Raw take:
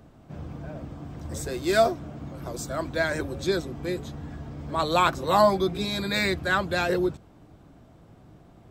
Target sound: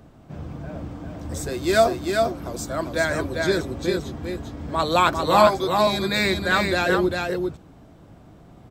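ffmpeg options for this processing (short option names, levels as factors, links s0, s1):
-filter_complex "[0:a]asettb=1/sr,asplit=3[s0][s1][s2];[s0]atrim=end=5.474[s3];[s1]atrim=start=5.47:end=5.87,asetpts=PTS-STARTPTS,afade=t=in:d=0.004:c=qsin,afade=t=out:st=0.396:d=0.004:c=qsin,highpass=420[s4];[s2]atrim=start=5.866[s5];[s3][s4]acrossfade=d=0.004:c1=hsin:c2=qsin[s6];[s6][s5]acrossfade=d=0.004:c1=qsin:c2=hsin,asplit=2[s7][s8];[s8]aecho=0:1:399:0.631[s9];[s7][s9]amix=inputs=2:normalize=0,volume=1.41"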